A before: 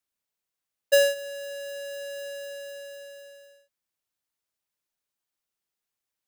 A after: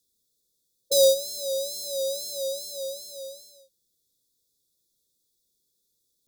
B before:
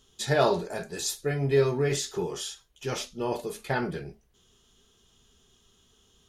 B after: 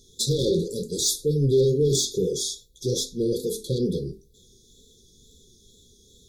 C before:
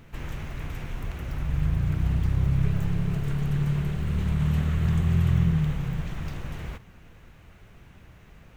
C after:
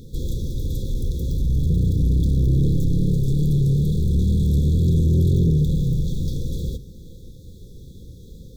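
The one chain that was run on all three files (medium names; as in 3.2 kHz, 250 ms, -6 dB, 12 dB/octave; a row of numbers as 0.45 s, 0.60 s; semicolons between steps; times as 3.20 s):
hum notches 50/100/150/200/250/300/350/400/450 Hz; wow and flutter 81 cents; saturation -24 dBFS; brick-wall FIR band-stop 550–3300 Hz; peak normalisation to -12 dBFS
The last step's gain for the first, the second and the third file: +13.0 dB, +9.5 dB, +11.0 dB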